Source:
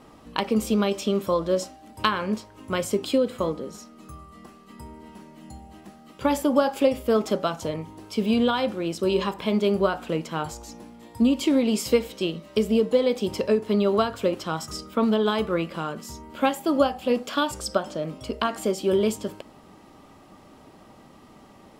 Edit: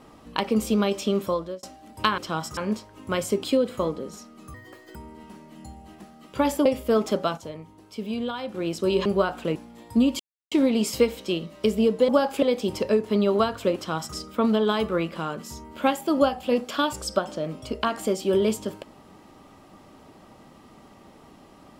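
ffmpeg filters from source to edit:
ffmpeg -i in.wav -filter_complex "[0:a]asplit=14[link_01][link_02][link_03][link_04][link_05][link_06][link_07][link_08][link_09][link_10][link_11][link_12][link_13][link_14];[link_01]atrim=end=1.63,asetpts=PTS-STARTPTS,afade=type=out:start_time=1.24:duration=0.39[link_15];[link_02]atrim=start=1.63:end=2.182,asetpts=PTS-STARTPTS,afade=type=in:duration=0.004:curve=hsin[link_16];[link_03]atrim=start=14.348:end=14.742[link_17];[link_04]atrim=start=2.178:end=4.154[link_18];[link_05]atrim=start=4.15:end=4.81,asetpts=PTS-STARTPTS,asetrate=70119,aresample=44100[link_19];[link_06]atrim=start=4.806:end=6.512[link_20];[link_07]atrim=start=6.848:end=7.572[link_21];[link_08]atrim=start=7.568:end=8.742,asetpts=PTS-STARTPTS,volume=-8dB[link_22];[link_09]atrim=start=8.738:end=9.252[link_23];[link_10]atrim=start=9.698:end=10.202[link_24];[link_11]atrim=start=10.798:end=11.44,asetpts=PTS-STARTPTS,afade=type=out:start_time=0.638:duration=0.004:curve=hsin,apad=pad_dur=0.32[link_25];[link_12]atrim=start=11.44:end=13.012,asetpts=PTS-STARTPTS,afade=type=in:duration=0.004:curve=hsin[link_26];[link_13]atrim=start=6.508:end=6.852[link_27];[link_14]atrim=start=13.008[link_28];[link_15][link_16]concat=n=2:v=0:a=1[link_29];[link_29][link_17]acrossfade=duration=0.004:curve1=hsin:curve2=hsin[link_30];[link_30][link_18]acrossfade=duration=0.004:curve1=hsin:curve2=hsin[link_31];[link_31][link_19]acrossfade=duration=0.004:curve1=hsin:curve2=hsin[link_32];[link_32][link_20]acrossfade=duration=0.004:curve1=hsin:curve2=hsin[link_33];[link_33][link_21]acrossfade=duration=0.004:curve1=hsin:curve2=hsin[link_34];[link_34][link_22]acrossfade=duration=0.004:curve1=hsin:curve2=hsin[link_35];[link_35][link_23]acrossfade=duration=0.004:curve1=hsin:curve2=hsin[link_36];[link_36][link_24]acrossfade=duration=0.004:curve1=hsin:curve2=hsin[link_37];[link_25][link_26]concat=n=2:v=0:a=1[link_38];[link_37][link_38]acrossfade=duration=0.004:curve1=hsin:curve2=hsin[link_39];[link_39][link_27]acrossfade=duration=0.004:curve1=hsin:curve2=hsin[link_40];[link_40][link_28]acrossfade=duration=0.004:curve1=hsin:curve2=hsin" out.wav

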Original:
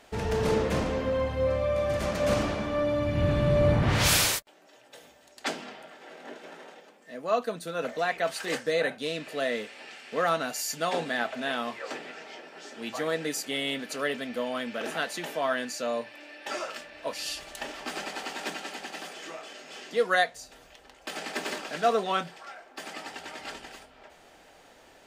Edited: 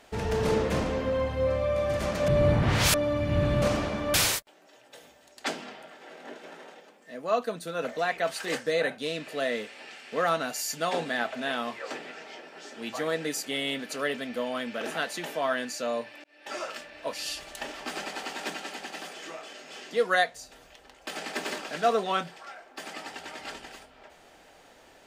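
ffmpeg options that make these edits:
ffmpeg -i in.wav -filter_complex "[0:a]asplit=6[link_01][link_02][link_03][link_04][link_05][link_06];[link_01]atrim=end=2.282[link_07];[link_02]atrim=start=3.478:end=4.142[link_08];[link_03]atrim=start=2.798:end=3.482[link_09];[link_04]atrim=start=2.278:end=2.802[link_10];[link_05]atrim=start=4.138:end=16.24,asetpts=PTS-STARTPTS,afade=type=out:start_time=12.098:duration=0.004:curve=hsin[link_11];[link_06]atrim=start=16.24,asetpts=PTS-STARTPTS,afade=type=in:duration=0.4[link_12];[link_07][link_08]acrossfade=duration=0.004:curve1=hsin:curve2=hsin[link_13];[link_13][link_09]acrossfade=duration=0.004:curve1=hsin:curve2=hsin[link_14];[link_14][link_10]acrossfade=duration=0.004:curve1=hsin:curve2=hsin[link_15];[link_11][link_12]concat=n=2:v=0:a=1[link_16];[link_15][link_16]acrossfade=duration=0.004:curve1=hsin:curve2=hsin" out.wav

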